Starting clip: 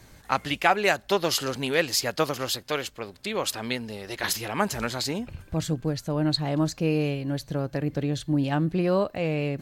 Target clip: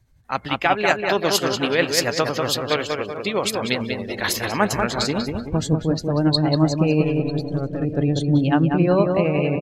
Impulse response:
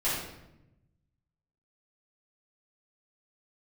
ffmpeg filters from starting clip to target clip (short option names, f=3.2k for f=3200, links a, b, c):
-filter_complex "[0:a]asettb=1/sr,asplit=3[a][b][c];[a]atrim=end=7.034[d];[b]atrim=start=7.03:end=7.81,asetpts=PTS-STARTPTS,afade=t=in:d=0.004:c=qsin,afade=t=out:st=0.776:d=0.004:c=qsin,aeval=exprs='(tanh(22.4*val(0)+0.45)-tanh(0.45))/22.4':c=same[e];[c]atrim=start=7.806[f];[d][e]acrossfade=d=0.004:c1=hsin:c2=qsin[g];[g][f]acrossfade=d=0.004:c1=qsin:c2=hsin,asplit=2[h][i];[i]aecho=0:1:949|1898|2847:0.112|0.0426|0.0162[j];[h][j]amix=inputs=2:normalize=0,tremolo=f=11:d=0.41,asplit=2[k][l];[l]adelay=191,lowpass=f=3.6k:p=1,volume=-4dB,asplit=2[m][n];[n]adelay=191,lowpass=f=3.6k:p=1,volume=0.51,asplit=2[o][p];[p]adelay=191,lowpass=f=3.6k:p=1,volume=0.51,asplit=2[q][r];[r]adelay=191,lowpass=f=3.6k:p=1,volume=0.51,asplit=2[s][t];[t]adelay=191,lowpass=f=3.6k:p=1,volume=0.51,asplit=2[u][v];[v]adelay=191,lowpass=f=3.6k:p=1,volume=0.51,asplit=2[w][x];[x]adelay=191,lowpass=f=3.6k:p=1,volume=0.51[y];[m][o][q][s][u][w][y]amix=inputs=7:normalize=0[z];[k][z]amix=inputs=2:normalize=0,afftdn=nr=18:nf=-41,dynaudnorm=f=110:g=7:m=7.5dB"